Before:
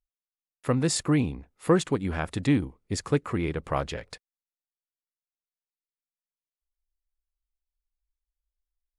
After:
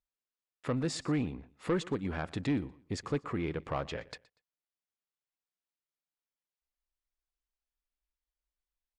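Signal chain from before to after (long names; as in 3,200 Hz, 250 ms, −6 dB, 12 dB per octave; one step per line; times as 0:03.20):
low-shelf EQ 65 Hz −11 dB
in parallel at +1.5 dB: downward compressor, threshold −36 dBFS, peak gain reduction 18.5 dB
on the sum: soft clipping −16.5 dBFS, distortion −15 dB
high-frequency loss of the air 87 metres
repeating echo 120 ms, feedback 30%, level −22 dB
level −6.5 dB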